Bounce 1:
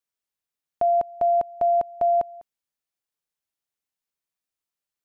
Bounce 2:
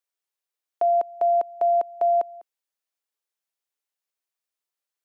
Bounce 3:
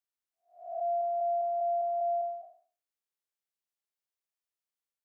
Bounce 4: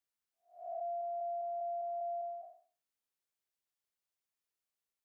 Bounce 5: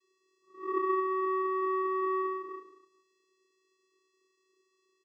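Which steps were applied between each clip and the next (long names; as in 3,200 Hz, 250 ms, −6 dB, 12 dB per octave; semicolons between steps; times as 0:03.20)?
high-pass filter 350 Hz 24 dB per octave
spectrum smeared in time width 309 ms; level −5.5 dB
downward compressor 3 to 1, threshold −40 dBFS, peak gain reduction 9 dB
single-tap delay 215 ms −15.5 dB; convolution reverb RT60 0.80 s, pre-delay 3 ms, DRR −6 dB; channel vocoder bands 8, square 377 Hz; level +3.5 dB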